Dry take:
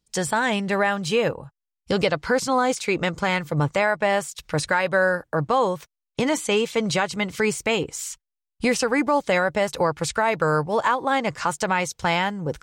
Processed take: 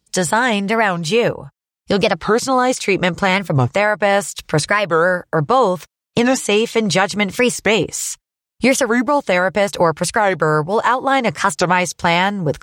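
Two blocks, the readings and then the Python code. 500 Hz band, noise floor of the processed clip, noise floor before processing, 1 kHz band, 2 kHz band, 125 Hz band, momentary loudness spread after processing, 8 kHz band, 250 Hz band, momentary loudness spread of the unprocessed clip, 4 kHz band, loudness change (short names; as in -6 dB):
+6.0 dB, under -85 dBFS, -84 dBFS, +6.5 dB, +6.0 dB, +7.0 dB, 4 LU, +7.5 dB, +6.5 dB, 6 LU, +6.5 dB, +6.5 dB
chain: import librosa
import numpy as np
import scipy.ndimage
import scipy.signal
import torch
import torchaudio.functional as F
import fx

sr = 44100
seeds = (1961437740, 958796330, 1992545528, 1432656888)

y = scipy.signal.sosfilt(scipy.signal.butter(2, 43.0, 'highpass', fs=sr, output='sos'), x)
y = fx.rider(y, sr, range_db=3, speed_s=0.5)
y = fx.record_warp(y, sr, rpm=45.0, depth_cents=250.0)
y = y * librosa.db_to_amplitude(6.5)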